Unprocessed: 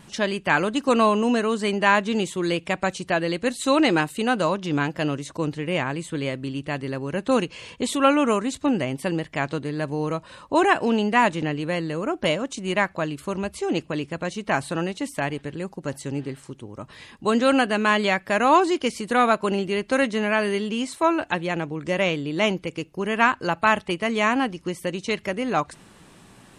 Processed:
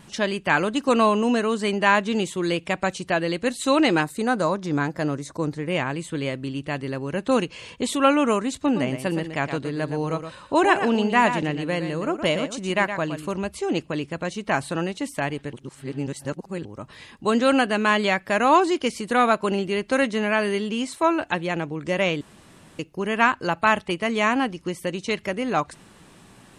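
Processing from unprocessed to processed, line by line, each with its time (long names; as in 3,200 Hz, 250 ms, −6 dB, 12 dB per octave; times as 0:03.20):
0:04.02–0:05.70: parametric band 2,900 Hz −13 dB 0.41 octaves
0:08.62–0:13.32: single-tap delay 117 ms −9 dB
0:15.53–0:16.65: reverse
0:22.21–0:22.79: fill with room tone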